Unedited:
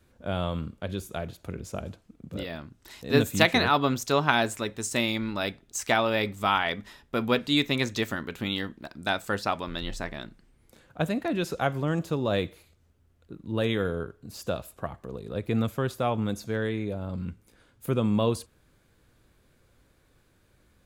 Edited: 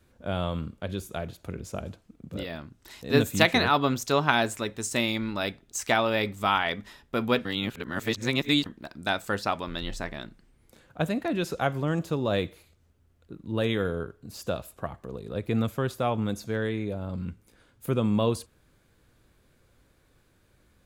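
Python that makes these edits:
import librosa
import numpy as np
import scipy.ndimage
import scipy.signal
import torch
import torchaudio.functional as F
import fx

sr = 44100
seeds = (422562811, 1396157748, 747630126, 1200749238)

y = fx.edit(x, sr, fx.reverse_span(start_s=7.45, length_s=1.21), tone=tone)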